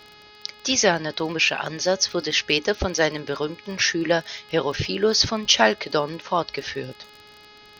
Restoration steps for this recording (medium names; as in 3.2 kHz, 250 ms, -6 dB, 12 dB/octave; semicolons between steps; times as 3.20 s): de-click; de-hum 420 Hz, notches 12